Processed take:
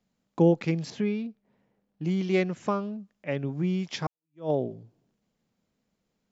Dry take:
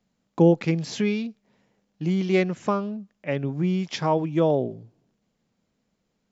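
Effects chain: 0.90–2.05 s: low-pass 1.5 kHz 6 dB/octave; 4.07–4.50 s: fade in exponential; trim -3.5 dB

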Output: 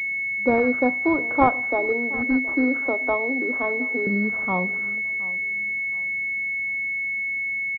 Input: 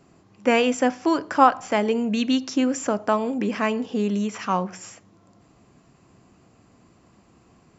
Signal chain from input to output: 1.66–4.07 s: Chebyshev high-pass 250 Hz, order 6; feedback delay 721 ms, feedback 33%, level -20 dB; class-D stage that switches slowly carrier 2.2 kHz

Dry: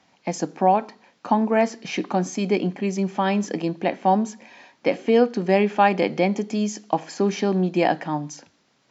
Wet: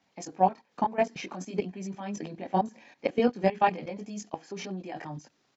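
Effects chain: level held to a coarse grid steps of 17 dB; chorus voices 2, 0.6 Hz, delay 26 ms, depth 1.4 ms; tempo 1.6×

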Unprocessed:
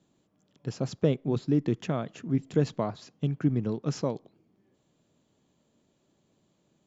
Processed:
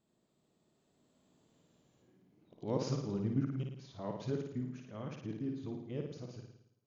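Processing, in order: reverse the whole clip; Doppler pass-by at 1.73 s, 29 m/s, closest 21 m; flutter echo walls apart 9.5 m, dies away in 0.74 s; trim -1.5 dB

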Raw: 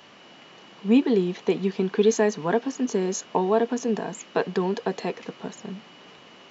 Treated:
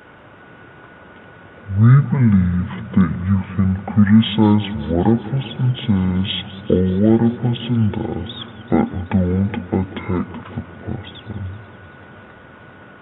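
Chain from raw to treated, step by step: speed mistake 15 ips tape played at 7.5 ips; modulated delay 192 ms, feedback 75%, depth 121 cents, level -18 dB; trim +7 dB

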